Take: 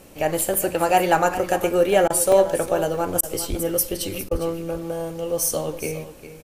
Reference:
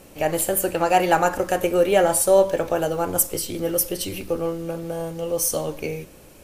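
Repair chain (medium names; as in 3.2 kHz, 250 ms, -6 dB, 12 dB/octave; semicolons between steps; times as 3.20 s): 3.49–3.61 s: high-pass 140 Hz 24 dB/octave; 4.31–4.43 s: high-pass 140 Hz 24 dB/octave; interpolate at 0.54/2.32/2.66/4.15 s, 3 ms; interpolate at 2.08/3.21/4.29 s, 20 ms; inverse comb 406 ms -13 dB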